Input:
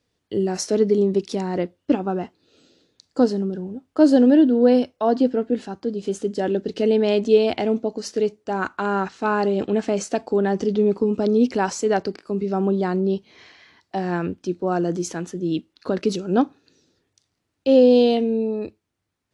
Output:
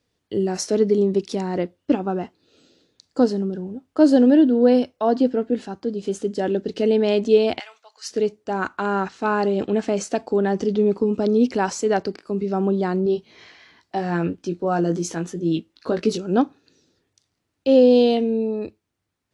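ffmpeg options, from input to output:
-filter_complex "[0:a]asplit=3[a][b][c];[a]afade=t=out:st=7.58:d=0.02[d];[b]highpass=f=1.2k:w=0.5412,highpass=f=1.2k:w=1.3066,afade=t=in:st=7.58:d=0.02,afade=t=out:st=8.1:d=0.02[e];[c]afade=t=in:st=8.1:d=0.02[f];[d][e][f]amix=inputs=3:normalize=0,asettb=1/sr,asplit=3[g][h][i];[g]atrim=end=13.044[j];[h]atrim=start=13.04:end=16.18,asetpts=PTS-STARTPTS,afade=t=in:d=0.004:c=qsin,afade=t=out:st=3.136:d=0.004:c=qsin,asplit=2[k][l];[l]adelay=18,volume=-6dB[m];[k][m]amix=inputs=2:normalize=0,atrim=end_sample=138474[n];[i]atrim=start=16.176[o];[j][n]acrossfade=d=0.004:c1=hsin:c2=qsin[p];[p][o]acrossfade=d=0.004:c1=qsin:c2=hsin"

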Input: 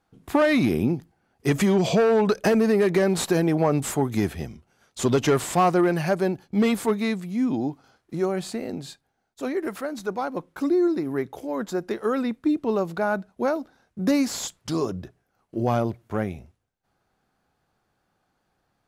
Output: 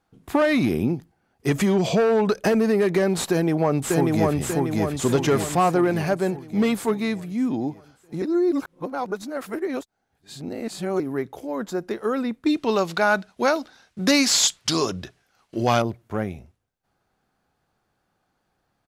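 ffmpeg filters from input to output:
-filter_complex "[0:a]asplit=2[a][b];[b]afade=t=in:st=3.31:d=0.01,afade=t=out:st=4.37:d=0.01,aecho=0:1:590|1180|1770|2360|2950|3540|4130|4720:0.891251|0.490188|0.269603|0.148282|0.081555|0.0448553|0.0246704|0.0135687[c];[a][c]amix=inputs=2:normalize=0,asettb=1/sr,asplit=3[d][e][f];[d]atrim=end=12.464[g];[e]atrim=start=12.46:end=15.82,asetpts=PTS-STARTPTS,afade=t=in:d=0.004:c=qsin,afade=t=out:st=3.356:d=0.004:c=qsin,equalizer=f=4.1k:w=0.33:g=15[h];[f]atrim=start=15.816[i];[g][h]acrossfade=d=0.004:c1=hsin:c2=qsin[j];[j][i]acrossfade=d=0.004:c1=qsin:c2=hsin,asplit=3[k][l][m];[k]atrim=end=8.222[n];[l]atrim=start=8.218:end=11.002,asetpts=PTS-STARTPTS,areverse[o];[m]atrim=start=10.998[p];[n][o]acrossfade=d=0.004:c1=hsin:c2=hsin[q];[q][p]acrossfade=d=0.004:c1=hsin:c2=hsin"

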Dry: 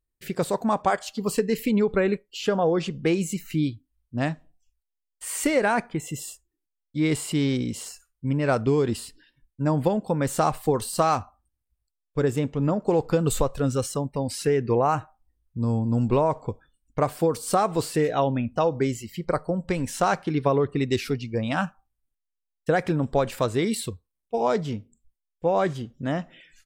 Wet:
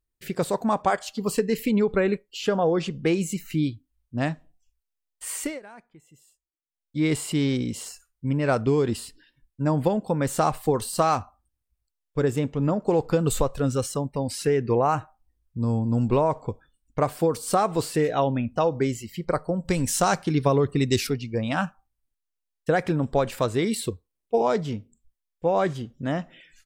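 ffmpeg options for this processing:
-filter_complex "[0:a]asettb=1/sr,asplit=3[a][b][c];[a]atrim=end=19.654[d];[b]atrim=start=19.65:end=21.07,asetpts=PTS-STARTPTS,afade=t=in:d=0.004:c=qsin,afade=t=out:st=1.416:d=0.004:c=qsin,bass=f=250:g=4,treble=f=4k:g=10[e];[c]atrim=start=21.066[f];[d][e]acrossfade=d=0.004:c1=hsin:c2=qsin[g];[g][f]acrossfade=d=0.004:c1=qsin:c2=hsin,asettb=1/sr,asplit=3[h][i][j];[h]atrim=end=23.824[k];[i]atrim=start=23.82:end=24.42,asetpts=PTS-STARTPTS,afade=t=in:d=0.004:c=qsin,afade=t=out:st=0.596:d=0.004:c=qsin,equalizer=f=380:w=1.2:g=7[l];[j]atrim=start=24.416[m];[k][l]acrossfade=d=0.004:c1=hsin:c2=qsin[n];[n][m]acrossfade=d=0.004:c1=qsin:c2=hsin,asplit=3[o][p][q];[o]atrim=end=5.6,asetpts=PTS-STARTPTS,afade=t=out:st=5.3:d=0.3:silence=0.0707946[r];[p]atrim=start=5.6:end=6.67,asetpts=PTS-STARTPTS,volume=-23dB[s];[q]atrim=start=6.67,asetpts=PTS-STARTPTS,afade=t=in:d=0.3:silence=0.0707946[t];[r][s][t]concat=n=3:v=0:a=1"

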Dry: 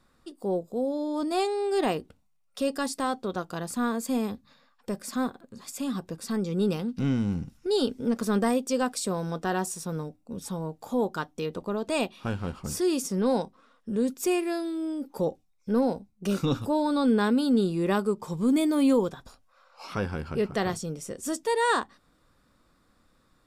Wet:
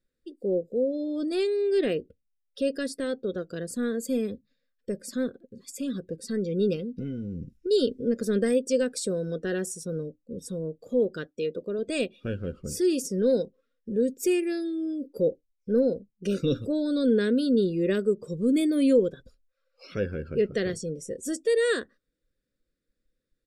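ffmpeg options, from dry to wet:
-filter_complex "[0:a]asettb=1/sr,asplit=3[a][b][c];[a]atrim=end=1.354[d];[b]atrim=start=1.35:end=3.26,asetpts=PTS-STARTPTS,afade=t=in:d=0.004:c=qsin,afade=t=out:st=1.906:d=0.004:c=qsin,equalizer=f=7.3k:t=o:w=0.77:g=-5[e];[c]atrim=start=3.256[f];[d][e]acrossfade=d=0.004:c1=hsin:c2=qsin[g];[g][f]acrossfade=d=0.004:c1=qsin:c2=hsin,asettb=1/sr,asplit=3[h][i][j];[h]atrim=end=6.754[k];[i]atrim=start=6.75:end=7.71,asetpts=PTS-STARTPTS,afade=t=in:d=0.004:c=qsin,afade=t=out:st=0.956:d=0.004:c=qsin,acompressor=threshold=-28dB:ratio=10:attack=3.2:release=140:knee=1:detection=peak[l];[j]atrim=start=7.706[m];[k][l]acrossfade=d=0.004:c1=hsin:c2=qsin[n];[n][m]acrossfade=d=0.004:c1=qsin:c2=hsin,asettb=1/sr,asplit=3[o][p][q];[o]atrim=end=11.274[r];[p]atrim=start=11.27:end=11.79,asetpts=PTS-STARTPTS,afade=t=in:d=0.004:c=qsin,afade=t=out:st=0.516:d=0.004:c=qsin,lowshelf=f=150:g=-9[s];[q]atrim=start=11.786[t];[r][s]acrossfade=d=0.004:c1=hsin:c2=qsin[u];[u][t]acrossfade=d=0.004:c1=qsin:c2=hsin,afftdn=nr=18:nf=-46,firequalizer=gain_entry='entry(220,0);entry(510,7);entry(850,-26);entry(1600,1)':delay=0.05:min_phase=1,volume=-1.5dB"

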